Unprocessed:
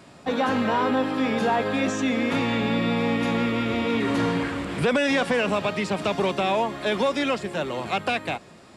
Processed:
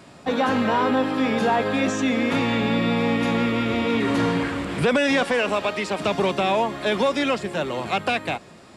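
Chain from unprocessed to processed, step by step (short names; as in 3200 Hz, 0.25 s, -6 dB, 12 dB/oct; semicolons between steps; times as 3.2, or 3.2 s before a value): 5.24–6 bell 140 Hz -14 dB 0.92 oct; gain +2 dB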